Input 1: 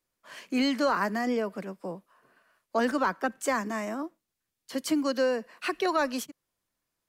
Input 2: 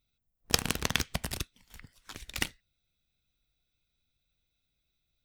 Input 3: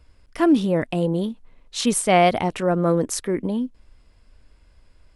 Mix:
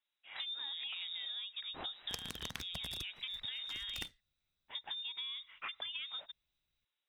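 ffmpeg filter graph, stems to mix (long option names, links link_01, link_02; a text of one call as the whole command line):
ffmpeg -i stem1.wav -i stem2.wav -i stem3.wav -filter_complex "[0:a]volume=-4.5dB[link_01];[1:a]adelay=1600,volume=-7dB[link_02];[2:a]acrusher=bits=5:mix=0:aa=0.000001,volume=-10.5dB,asplit=2[link_03][link_04];[link_04]apad=whole_len=312411[link_05];[link_01][link_05]sidechaincompress=threshold=-29dB:ratio=8:attack=16:release=143[link_06];[link_06][link_03]amix=inputs=2:normalize=0,lowpass=frequency=3300:width_type=q:width=0.5098,lowpass=frequency=3300:width_type=q:width=0.6013,lowpass=frequency=3300:width_type=q:width=0.9,lowpass=frequency=3300:width_type=q:width=2.563,afreqshift=-3900,acompressor=threshold=-35dB:ratio=6,volume=0dB[link_07];[link_02][link_07]amix=inputs=2:normalize=0,acompressor=threshold=-40dB:ratio=4" out.wav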